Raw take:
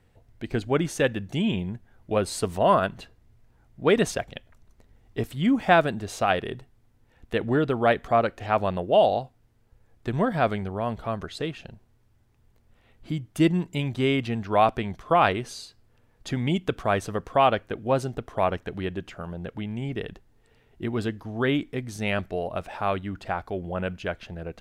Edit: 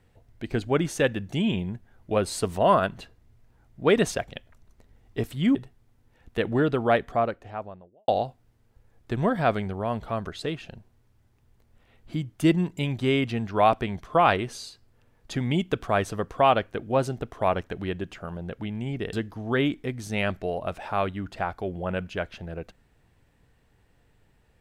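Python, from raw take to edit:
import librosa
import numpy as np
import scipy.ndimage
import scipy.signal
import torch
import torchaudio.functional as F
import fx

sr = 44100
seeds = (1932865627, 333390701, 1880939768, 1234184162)

y = fx.studio_fade_out(x, sr, start_s=7.7, length_s=1.34)
y = fx.edit(y, sr, fx.cut(start_s=5.55, length_s=0.96),
    fx.cut(start_s=20.09, length_s=0.93), tone=tone)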